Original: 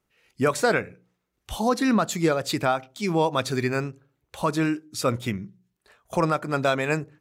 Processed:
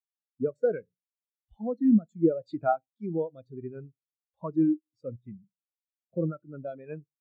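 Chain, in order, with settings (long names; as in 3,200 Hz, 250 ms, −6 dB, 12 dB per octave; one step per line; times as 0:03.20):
rotating-speaker cabinet horn 0.65 Hz
every bin expanded away from the loudest bin 2.5 to 1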